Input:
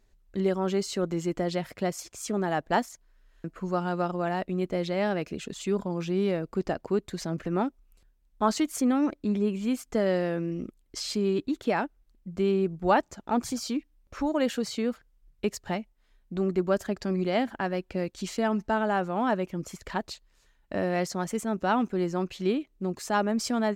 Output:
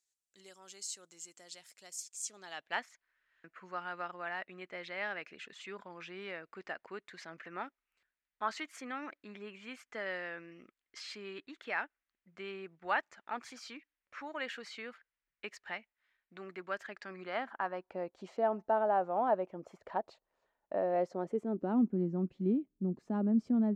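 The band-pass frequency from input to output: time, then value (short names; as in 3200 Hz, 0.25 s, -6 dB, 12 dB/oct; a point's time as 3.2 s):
band-pass, Q 1.9
2.21 s 7800 Hz
2.84 s 1900 Hz
16.97 s 1900 Hz
18.2 s 680 Hz
20.83 s 680 Hz
21.91 s 220 Hz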